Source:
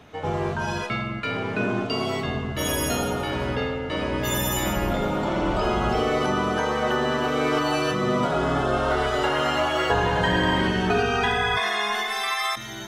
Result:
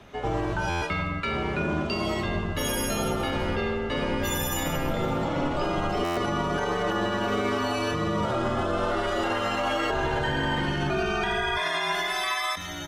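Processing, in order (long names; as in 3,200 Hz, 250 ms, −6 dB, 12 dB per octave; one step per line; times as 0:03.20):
brickwall limiter −18 dBFS, peak gain reduction 9.5 dB
frequency shifter −40 Hz
far-end echo of a speakerphone 160 ms, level −15 dB
buffer that repeats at 0:00.69/0:06.04, samples 512, times 10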